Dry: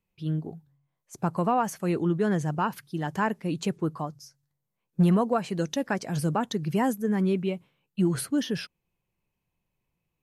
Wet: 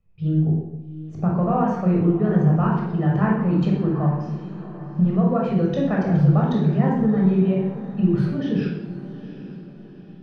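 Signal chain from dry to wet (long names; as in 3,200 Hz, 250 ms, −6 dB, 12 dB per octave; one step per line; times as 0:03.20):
spectral tilt −2.5 dB per octave
downward compressor, threshold −22 dBFS, peak gain reduction 11 dB
high-frequency loss of the air 210 metres
feedback delay with all-pass diffusion 782 ms, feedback 45%, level −14 dB
convolution reverb RT60 0.85 s, pre-delay 19 ms, DRR −2.5 dB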